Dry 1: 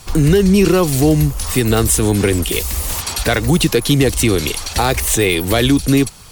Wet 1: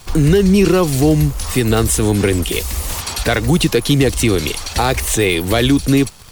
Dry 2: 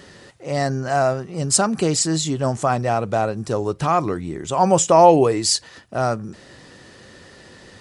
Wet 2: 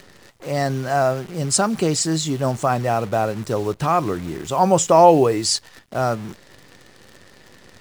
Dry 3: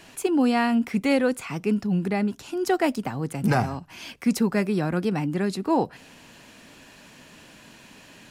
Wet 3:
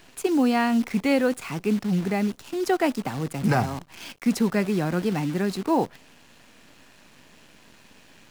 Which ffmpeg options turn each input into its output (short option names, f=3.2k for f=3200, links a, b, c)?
-af "acrusher=bits=7:dc=4:mix=0:aa=0.000001,highshelf=f=9.1k:g=-5"